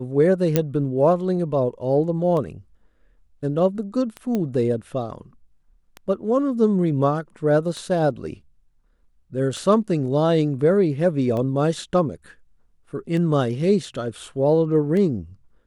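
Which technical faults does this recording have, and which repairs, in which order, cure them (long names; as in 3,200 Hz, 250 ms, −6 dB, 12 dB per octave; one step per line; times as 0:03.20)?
scratch tick 33 1/3 rpm
0:00.56: click −4 dBFS
0:04.35: click −13 dBFS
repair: click removal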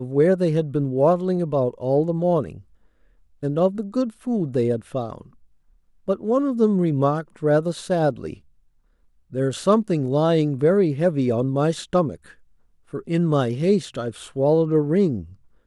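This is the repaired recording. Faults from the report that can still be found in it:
none of them is left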